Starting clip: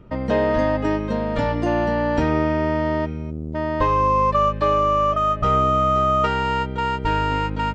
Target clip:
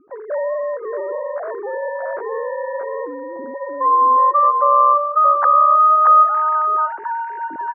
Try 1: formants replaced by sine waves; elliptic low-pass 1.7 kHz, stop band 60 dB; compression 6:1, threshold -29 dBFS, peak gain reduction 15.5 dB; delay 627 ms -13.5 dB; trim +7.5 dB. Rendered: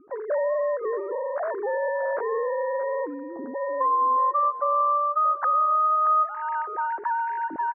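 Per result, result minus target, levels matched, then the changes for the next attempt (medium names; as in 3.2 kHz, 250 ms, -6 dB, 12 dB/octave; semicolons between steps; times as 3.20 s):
compression: peak gain reduction +8.5 dB; echo-to-direct -9 dB
change: compression 6:1, threshold -19 dBFS, peak gain reduction 7 dB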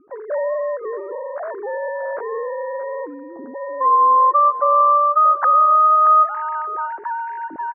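echo-to-direct -9 dB
change: delay 627 ms -4.5 dB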